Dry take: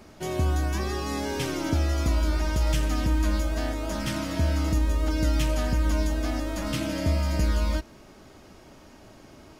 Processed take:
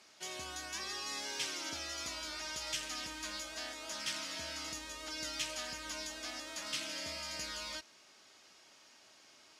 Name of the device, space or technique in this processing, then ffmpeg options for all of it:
piezo pickup straight into a mixer: -af "lowpass=5.3k,aderivative,volume=5dB"

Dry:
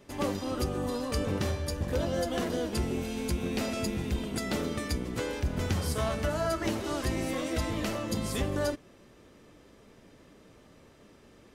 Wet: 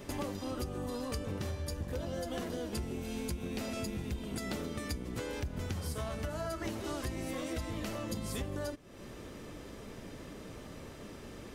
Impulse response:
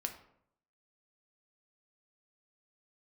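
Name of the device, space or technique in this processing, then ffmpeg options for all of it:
ASMR close-microphone chain: -af "lowshelf=f=130:g=4,acompressor=threshold=-45dB:ratio=5,highshelf=f=10k:g=4.5,volume=8dB"

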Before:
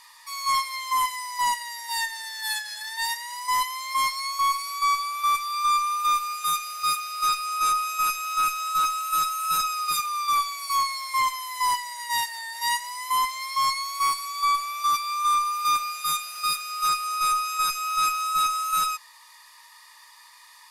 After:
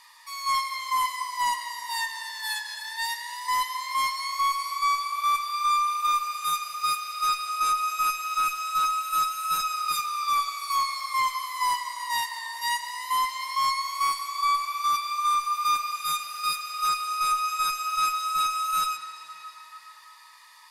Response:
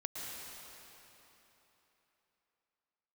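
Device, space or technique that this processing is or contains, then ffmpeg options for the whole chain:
filtered reverb send: -filter_complex "[0:a]asplit=2[a][b];[b]highpass=f=460:p=1,lowpass=5.9k[c];[1:a]atrim=start_sample=2205[d];[c][d]afir=irnorm=-1:irlink=0,volume=-5.5dB[e];[a][e]amix=inputs=2:normalize=0,volume=-4dB"

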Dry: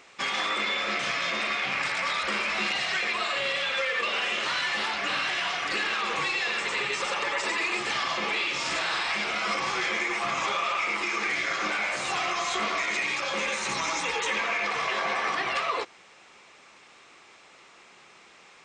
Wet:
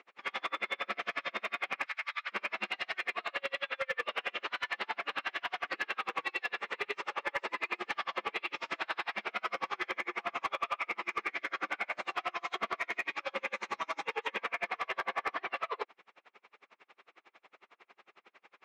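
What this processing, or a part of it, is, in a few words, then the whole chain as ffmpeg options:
helicopter radio: -filter_complex "[0:a]asettb=1/sr,asplit=3[a][b][c];[a]atrim=end=1.864[d];[b]atrim=start=1.86:end=2.32,asetpts=PTS-STARTPTS,afade=t=in:d=0.004:c=qsin,afade=t=out:st=0.456:d=0.004:c=qsin,highpass=1.3k[e];[c]atrim=start=2.316[f];[d][e]acrossfade=d=0.004:c1=hsin:c2=qsin[g];[g][f]acrossfade=d=0.004:c1=qsin:c2=hsin,highpass=300,lowpass=2.6k,aeval=exprs='val(0)*pow(10,-37*(0.5-0.5*cos(2*PI*11*n/s))/20)':c=same,asoftclip=type=hard:threshold=-24.5dB"

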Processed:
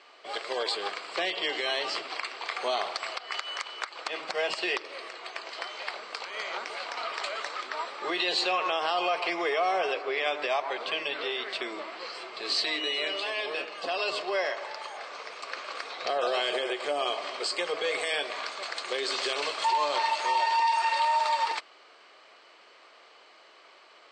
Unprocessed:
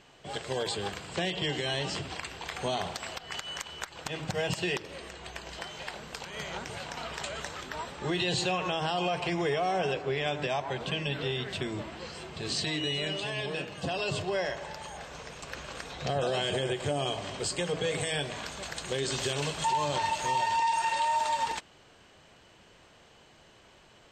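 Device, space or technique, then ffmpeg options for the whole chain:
phone speaker on a table: -af "highpass=f=350:w=0.5412,highpass=f=350:w=1.3066,equalizer=f=650:t=q:w=4:g=3,equalizer=f=1.2k:t=q:w=4:g=10,equalizer=f=2.2k:t=q:w=4:g=7,equalizer=f=4.5k:t=q:w=4:g=8,equalizer=f=6.7k:t=q:w=4:g=-7,lowpass=f=7.9k:w=0.5412,lowpass=f=7.9k:w=1.3066"

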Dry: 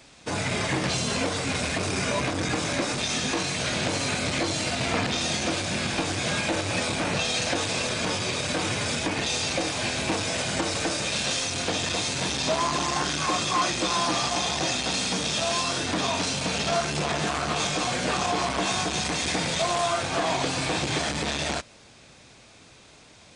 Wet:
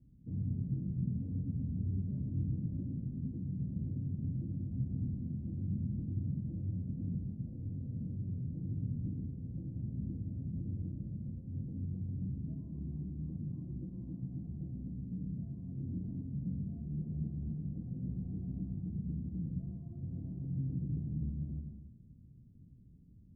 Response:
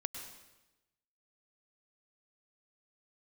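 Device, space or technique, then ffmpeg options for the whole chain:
club heard from the street: -filter_complex "[0:a]alimiter=limit=-21dB:level=0:latency=1:release=208,lowpass=f=200:w=0.5412,lowpass=f=200:w=1.3066[a];[1:a]atrim=start_sample=2205[b];[a][b]afir=irnorm=-1:irlink=0,volume=2dB"

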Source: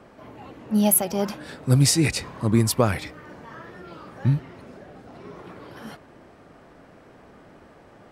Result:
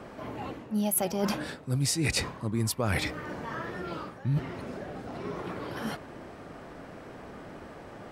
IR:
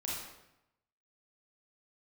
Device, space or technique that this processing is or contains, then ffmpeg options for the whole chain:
compression on the reversed sound: -af "areverse,acompressor=threshold=-30dB:ratio=10,areverse,volume=5dB"

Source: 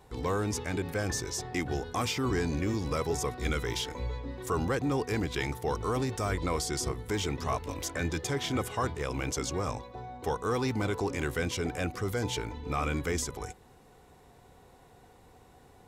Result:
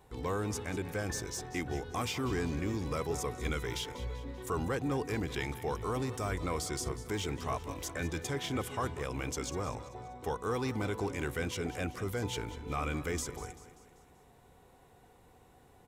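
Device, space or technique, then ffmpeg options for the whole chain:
exciter from parts: -filter_complex "[0:a]asplit=2[a][b];[b]highpass=4k,asoftclip=type=tanh:threshold=-34.5dB,highpass=f=3k:w=0.5412,highpass=f=3k:w=1.3066,volume=-9dB[c];[a][c]amix=inputs=2:normalize=0,aecho=1:1:194|388|582|776|970:0.178|0.0907|0.0463|0.0236|0.012,volume=-4dB"

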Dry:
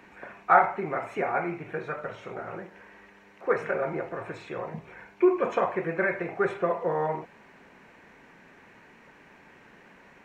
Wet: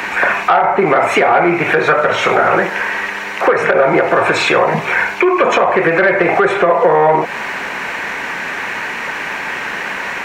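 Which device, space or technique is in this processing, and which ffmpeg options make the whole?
mastering chain: -filter_complex "[0:a]equalizer=f=1k:t=o:w=2.9:g=3.5,acrossover=split=130|710[a][b][c];[a]acompressor=threshold=-57dB:ratio=4[d];[b]acompressor=threshold=-28dB:ratio=4[e];[c]acompressor=threshold=-40dB:ratio=4[f];[d][e][f]amix=inputs=3:normalize=0,acompressor=threshold=-32dB:ratio=2,asoftclip=type=tanh:threshold=-24.5dB,tiltshelf=f=730:g=-7,alimiter=level_in=27.5dB:limit=-1dB:release=50:level=0:latency=1,asettb=1/sr,asplit=3[g][h][i];[g]atrim=end=4.124[j];[h]atrim=start=4.12:end=4.54,asetpts=PTS-STARTPTS,afade=t=in:d=0.004:c=qsin,afade=t=out:st=0.416:d=0.004:c=qsin,bandreject=f=1.9k:w=10[k];[i]atrim=start=4.536[l];[j][k]acrossfade=d=0.004:c1=hsin:c2=qsin[m];[m][l]acrossfade=d=0.004:c1=qsin:c2=hsin,volume=-1dB"

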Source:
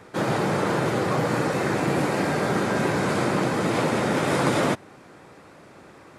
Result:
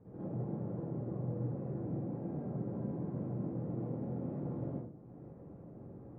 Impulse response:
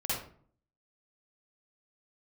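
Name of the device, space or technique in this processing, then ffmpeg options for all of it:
television next door: -filter_complex "[0:a]acompressor=threshold=-40dB:ratio=3,lowpass=340[a];[1:a]atrim=start_sample=2205[b];[a][b]afir=irnorm=-1:irlink=0,volume=-5dB"

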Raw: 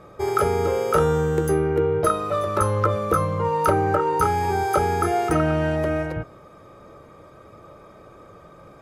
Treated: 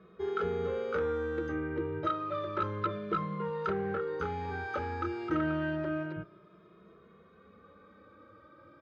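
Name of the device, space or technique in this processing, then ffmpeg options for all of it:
barber-pole flanger into a guitar amplifier: -filter_complex "[0:a]asplit=2[a][b];[b]adelay=2.4,afreqshift=0.29[c];[a][c]amix=inputs=2:normalize=1,asoftclip=type=tanh:threshold=-15.5dB,highpass=77,equalizer=f=130:t=q:w=4:g=-6,equalizer=f=190:t=q:w=4:g=7,equalizer=f=330:t=q:w=4:g=5,equalizer=f=750:t=q:w=4:g=-10,equalizer=f=1.5k:t=q:w=4:g=6,equalizer=f=3.7k:t=q:w=4:g=3,lowpass=f=4.2k:w=0.5412,lowpass=f=4.2k:w=1.3066,volume=-8.5dB"

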